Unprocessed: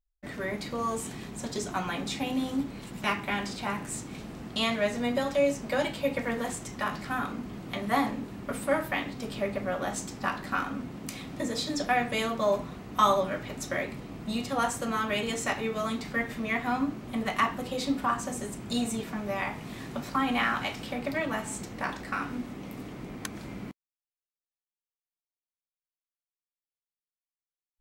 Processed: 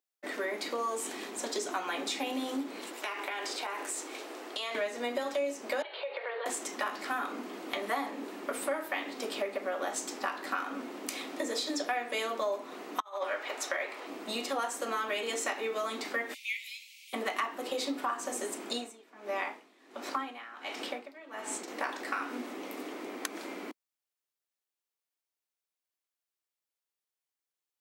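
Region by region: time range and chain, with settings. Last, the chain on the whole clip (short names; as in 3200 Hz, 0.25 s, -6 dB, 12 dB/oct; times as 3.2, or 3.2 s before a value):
2.92–4.75 HPF 320 Hz 24 dB/oct + compressor 10:1, threshold -35 dBFS
5.82–6.46 Chebyshev band-pass 400–4300 Hz, order 5 + compressor 5:1, threshold -37 dBFS
13–14.07 HPF 650 Hz + high shelf 4900 Hz -10 dB + negative-ratio compressor -33 dBFS, ratio -0.5
16.34–17.13 steep high-pass 2200 Hz 96 dB/oct + upward compressor, threshold -52 dBFS
18.69–21.68 high shelf 10000 Hz -8.5 dB + dB-linear tremolo 1.4 Hz, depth 24 dB
whole clip: steep high-pass 290 Hz 36 dB/oct; compressor 4:1, threshold -35 dBFS; gain +4 dB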